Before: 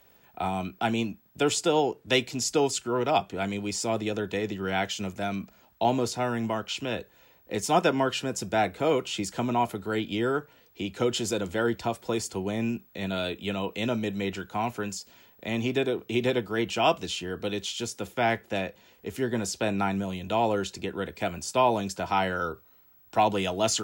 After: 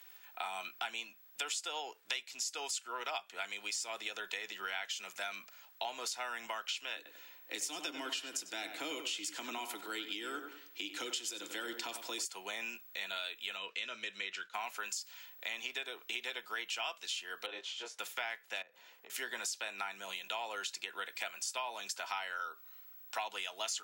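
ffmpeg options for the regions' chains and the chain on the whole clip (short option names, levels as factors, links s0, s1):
-filter_complex "[0:a]asettb=1/sr,asplit=3[s0][s1][s2];[s0]atrim=end=6.964[s3];[s1]atrim=start=6.96:end=12.25,asetpts=PTS-STARTPTS,afade=t=in:d=0.004:c=qsin,afade=t=out:st=5.286:d=0.004:c=qsin,equalizer=f=300:t=o:w=0.43:g=14.5,acrossover=split=380|3000[s4][s5][s6];[s5]acompressor=threshold=0.0178:ratio=6:attack=3.2:release=140:knee=2.83:detection=peak[s7];[s4][s7][s6]amix=inputs=3:normalize=0,asplit=2[s8][s9];[s9]adelay=94,lowpass=f=2200:p=1,volume=0.398,asplit=2[s10][s11];[s11]adelay=94,lowpass=f=2200:p=1,volume=0.4,asplit=2[s12][s13];[s13]adelay=94,lowpass=f=2200:p=1,volume=0.4,asplit=2[s14][s15];[s15]adelay=94,lowpass=f=2200:p=1,volume=0.4,asplit=2[s16][s17];[s17]adelay=94,lowpass=f=2200:p=1,volume=0.4[s18];[s8][s10][s12][s14][s16][s18]amix=inputs=6:normalize=0,atrim=end_sample=233289[s19];[s2]atrim=start=12.246[s20];[s3][s19]acrossfade=d=0.004:c1=hsin:c2=qsin[s21];[s21][s20]acrossfade=d=0.004:c1=qsin:c2=hsin,asettb=1/sr,asplit=3[s22][s23][s24];[s22]atrim=end=13.574[s25];[s23]atrim=start=13.57:end=14.54,asetpts=PTS-STARTPTS,afade=t=in:d=0.004:c=qsin,afade=t=out:st=0.966:d=0.004:c=qsin,agate=range=0.0224:threshold=0.00708:ratio=3:release=100:detection=peak,lowpass=6000,equalizer=f=810:t=o:w=0.45:g=-14.5[s26];[s24]atrim=start=14.536[s27];[s25][s26]acrossfade=d=0.004:c1=hsin:c2=qsin[s28];[s28][s27]acrossfade=d=0.004:c1=qsin:c2=hsin,asettb=1/sr,asplit=3[s29][s30][s31];[s29]atrim=end=17.464[s32];[s30]atrim=start=17.46:end=17.99,asetpts=PTS-STARTPTS,afade=t=in:d=0.004:c=qsin,afade=t=out:st=0.526:d=0.004:c=qsin,bandpass=f=550:t=q:w=0.85,asplit=2[s33][s34];[s34]adelay=23,volume=0.794[s35];[s33][s35]amix=inputs=2:normalize=0,atrim=end_sample=23373[s36];[s31]atrim=start=17.986[s37];[s32][s36]acrossfade=d=0.004:c1=hsin:c2=qsin[s38];[s38][s37]acrossfade=d=0.004:c1=qsin:c2=hsin,asettb=1/sr,asplit=3[s39][s40][s41];[s39]atrim=end=18.624[s42];[s40]atrim=start=18.62:end=19.1,asetpts=PTS-STARTPTS,afade=t=in:d=0.004:c=qsin,afade=t=out:st=0.476:d=0.004:c=qsin,highpass=100,tiltshelf=f=1200:g=7.5,acompressor=threshold=0.01:ratio=10:attack=3.2:release=140:knee=1:detection=peak[s43];[s41]atrim=start=19.096[s44];[s42][s43]acrossfade=d=0.004:c1=hsin:c2=qsin[s45];[s45][s44]acrossfade=d=0.004:c1=qsin:c2=hsin,highpass=1400,acompressor=threshold=0.00891:ratio=6,volume=1.68"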